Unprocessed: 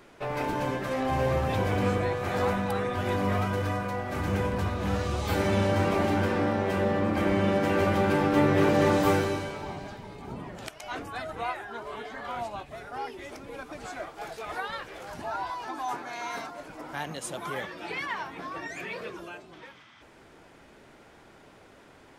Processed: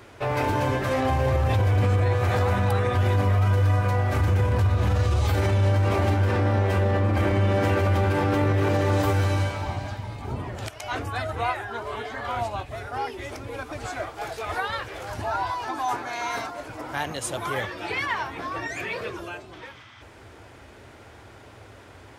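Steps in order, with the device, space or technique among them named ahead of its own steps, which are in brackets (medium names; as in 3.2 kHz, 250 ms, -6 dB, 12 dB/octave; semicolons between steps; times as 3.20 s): car stereo with a boomy subwoofer (resonant low shelf 130 Hz +6.5 dB, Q 3; peak limiter -20 dBFS, peak gain reduction 11.5 dB); high-pass 56 Hz; 9.13–10.25 s: peaking EQ 410 Hz -13 dB 0.22 oct; trim +6 dB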